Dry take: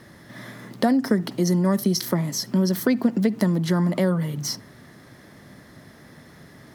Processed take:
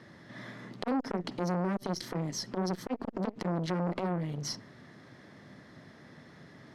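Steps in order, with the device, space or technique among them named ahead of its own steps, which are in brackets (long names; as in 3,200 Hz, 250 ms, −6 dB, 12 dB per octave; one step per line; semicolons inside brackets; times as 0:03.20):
valve radio (band-pass filter 92–5,300 Hz; tube saturation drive 17 dB, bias 0.5; saturating transformer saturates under 760 Hz)
level −3 dB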